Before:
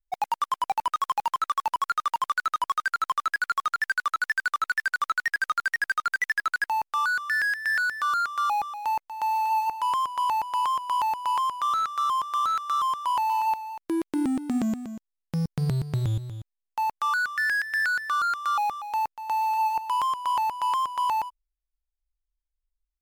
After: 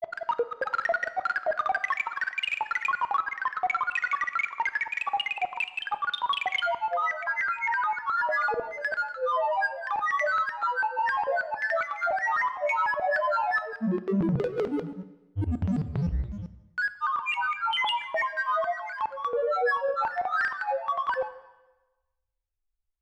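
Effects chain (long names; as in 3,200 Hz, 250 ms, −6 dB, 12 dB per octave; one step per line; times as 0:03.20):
low-pass filter 2,200 Hz 12 dB per octave
granular cloud 100 ms, grains 20 per second, pitch spread up and down by 12 semitones
dense smooth reverb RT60 1.1 s, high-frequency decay 0.95×, DRR 12 dB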